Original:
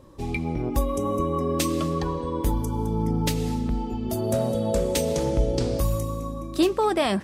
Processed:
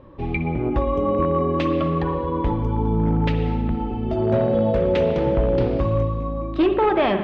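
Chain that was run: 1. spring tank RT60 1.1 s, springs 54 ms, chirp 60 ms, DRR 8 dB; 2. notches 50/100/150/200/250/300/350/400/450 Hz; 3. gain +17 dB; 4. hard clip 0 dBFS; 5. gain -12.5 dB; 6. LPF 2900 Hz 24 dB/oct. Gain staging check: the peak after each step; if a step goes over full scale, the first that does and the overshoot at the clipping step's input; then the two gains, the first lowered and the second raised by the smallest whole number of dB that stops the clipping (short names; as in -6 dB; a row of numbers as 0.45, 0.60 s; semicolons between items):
-9.0, -9.5, +7.5, 0.0, -12.5, -11.5 dBFS; step 3, 7.5 dB; step 3 +9 dB, step 5 -4.5 dB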